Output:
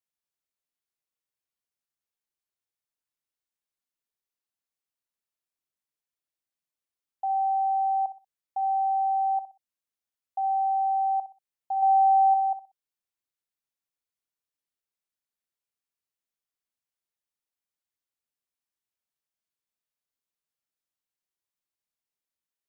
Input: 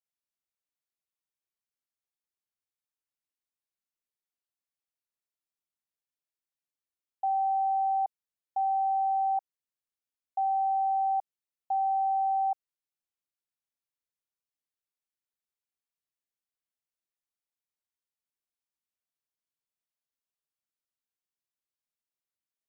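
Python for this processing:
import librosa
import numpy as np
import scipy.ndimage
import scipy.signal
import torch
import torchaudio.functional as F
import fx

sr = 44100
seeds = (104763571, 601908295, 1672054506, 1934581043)

p1 = fx.dynamic_eq(x, sr, hz=760.0, q=1.7, threshold_db=-39.0, ratio=4.0, max_db=6, at=(11.82, 12.34))
y = p1 + fx.echo_feedback(p1, sr, ms=62, feedback_pct=27, wet_db=-13, dry=0)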